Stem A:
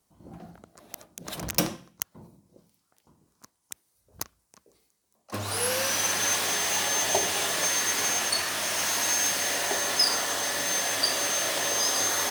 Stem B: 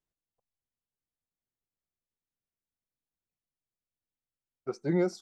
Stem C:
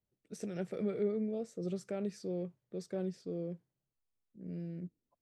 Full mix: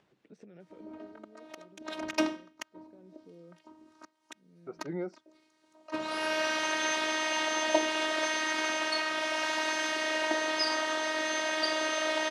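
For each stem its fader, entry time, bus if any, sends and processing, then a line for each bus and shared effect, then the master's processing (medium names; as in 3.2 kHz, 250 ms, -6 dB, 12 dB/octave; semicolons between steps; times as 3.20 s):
+3.0 dB, 0.60 s, no send, robot voice 313 Hz
-8.5 dB, 0.00 s, no send, none
-16.5 dB, 0.00 s, no send, compression 2.5:1, threshold -41 dBFS, peak gain reduction 9 dB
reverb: none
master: upward compressor, threshold -41 dBFS; band-pass 160–3000 Hz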